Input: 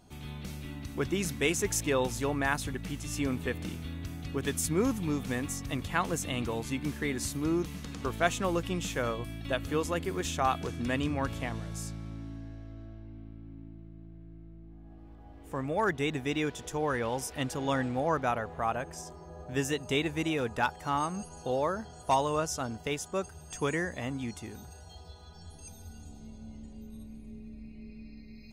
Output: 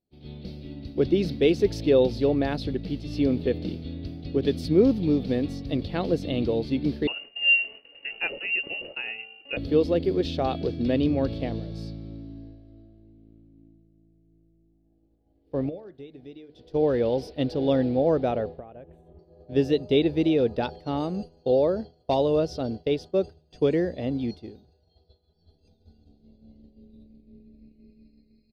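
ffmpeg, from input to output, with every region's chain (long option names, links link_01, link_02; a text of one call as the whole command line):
ffmpeg -i in.wav -filter_complex "[0:a]asettb=1/sr,asplit=3[link_01][link_02][link_03];[link_01]atrim=end=7.074[link_04];[link_02]atrim=start=7.07:end=9.57,asetpts=PTS-STARTPTS,afade=type=in:duration=0.004:curve=qsin,afade=type=out:start_time=2.496:duration=0.004:curve=qsin,highpass=frequency=240:width=0.5412,highpass=frequency=240:width=1.3066,equalizer=frequency=320:width=7.7:gain=14.5,lowpass=frequency=2600:width_type=q:width=0.5098,lowpass=frequency=2600:width_type=q:width=0.6013,lowpass=frequency=2600:width_type=q:width=0.9,lowpass=frequency=2600:width_type=q:width=2.563,afreqshift=-3100[link_05];[link_03]atrim=start=9.566[link_06];[link_04][link_05]acrossfade=duration=0.004:curve1=hsin:curve2=qsin[link_07];[link_07][link_06]acrossfade=duration=0.004:curve1=qsin:curve2=hsin,asettb=1/sr,asplit=3[link_08][link_09][link_10];[link_08]atrim=end=15.694[link_11];[link_09]atrim=start=15.69:end=16.73,asetpts=PTS-STARTPTS,afade=type=in:duration=0.004:curve=qsin,afade=type=out:start_time=1.036:duration=0.004:curve=qsin,acompressor=threshold=-38dB:ratio=16:attack=3.2:release=140:knee=1:detection=peak,bandreject=frequency=75.4:width_type=h:width=4,bandreject=frequency=150.8:width_type=h:width=4,bandreject=frequency=226.2:width_type=h:width=4,bandreject=frequency=301.6:width_type=h:width=4,bandreject=frequency=377:width_type=h:width=4,bandreject=frequency=452.4:width_type=h:width=4,bandreject=frequency=527.8:width_type=h:width=4,bandreject=frequency=603.2:width_type=h:width=4,bandreject=frequency=678.6:width_type=h:width=4,bandreject=frequency=754:width_type=h:width=4,bandreject=frequency=829.4:width_type=h:width=4,bandreject=frequency=904.8:width_type=h:width=4,bandreject=frequency=980.2:width_type=h:width=4,bandreject=frequency=1055.6:width_type=h:width=4,bandreject=frequency=1131:width_type=h:width=4,bandreject=frequency=1206.4:width_type=h:width=4,bandreject=frequency=1281.8:width_type=h:width=4,bandreject=frequency=1357.2:width_type=h:width=4,bandreject=frequency=1432.6:width_type=h:width=4,bandreject=frequency=1508:width_type=h:width=4,bandreject=frequency=1583.4:width_type=h:width=4,bandreject=frequency=1658.8:width_type=h:width=4,bandreject=frequency=1734.2:width_type=h:width=4,bandreject=frequency=1809.6:width_type=h:width=4,bandreject=frequency=1885:width_type=h:width=4,bandreject=frequency=1960.4:width_type=h:width=4,bandreject=frequency=2035.8:width_type=h:width=4,bandreject=frequency=2111.2:width_type=h:width=4,bandreject=frequency=2186.6:width_type=h:width=4,bandreject=frequency=2262:width_type=h:width=4,bandreject=frequency=2337.4:width_type=h:width=4,bandreject=frequency=2412.8:width_type=h:width=4,bandreject=frequency=2488.2:width_type=h:width=4[link_12];[link_10]atrim=start=16.726[link_13];[link_11][link_12]acrossfade=duration=0.004:curve1=hsin:curve2=qsin[link_14];[link_14][link_13]acrossfade=duration=0.004:curve1=qsin:curve2=hsin,asettb=1/sr,asplit=3[link_15][link_16][link_17];[link_15]atrim=end=18.594[link_18];[link_16]atrim=start=18.59:end=19.19,asetpts=PTS-STARTPTS,afade=type=in:duration=0.004:curve=qsin,afade=type=out:start_time=0.596:duration=0.004:curve=qsin,asubboost=boost=8:cutoff=190,acompressor=threshold=-38dB:ratio=6:attack=3.2:release=140:knee=1:detection=peak,asuperstop=centerf=5100:order=4:qfactor=1[link_19];[link_17]atrim=start=19.186[link_20];[link_18][link_19]acrossfade=duration=0.004:curve1=hsin:curve2=qsin[link_21];[link_21][link_20]acrossfade=duration=0.004:curve1=qsin:curve2=hsin,agate=range=-33dB:threshold=-35dB:ratio=3:detection=peak,firequalizer=gain_entry='entry(110,0);entry(340,6);entry(540,6);entry(1000,-14);entry(1500,-13);entry(4500,4);entry(6800,-28);entry(13000,-22)':delay=0.05:min_phase=1,volume=4.5dB" out.wav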